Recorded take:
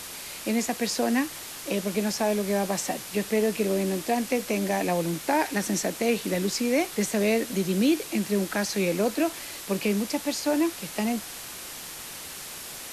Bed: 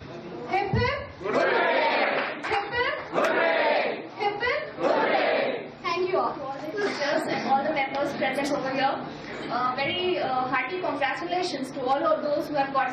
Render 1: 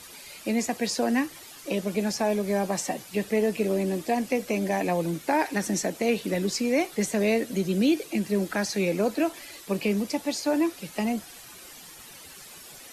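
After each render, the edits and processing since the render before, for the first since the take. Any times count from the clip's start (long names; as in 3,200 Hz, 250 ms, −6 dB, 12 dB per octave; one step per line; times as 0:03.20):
broadband denoise 11 dB, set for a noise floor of −40 dBFS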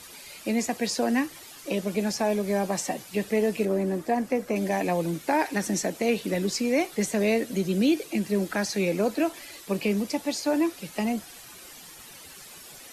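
0:03.65–0:04.56: high shelf with overshoot 2,100 Hz −6 dB, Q 1.5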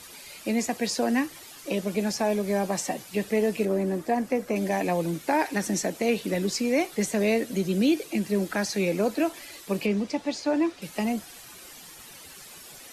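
0:09.86–0:10.82: high-frequency loss of the air 80 metres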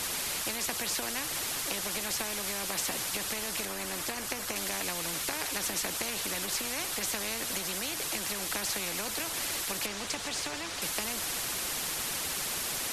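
downward compressor, threshold −27 dBFS, peak gain reduction 9 dB
every bin compressed towards the loudest bin 4 to 1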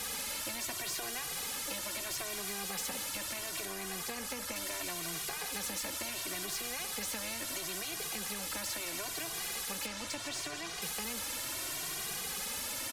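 soft clipping −28 dBFS, distortion −17 dB
barber-pole flanger 2 ms +0.73 Hz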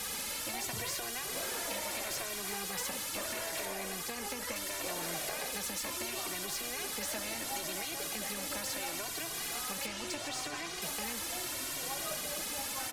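mix in bed −20.5 dB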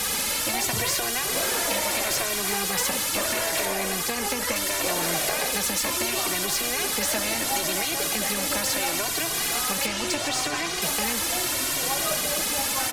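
level +12 dB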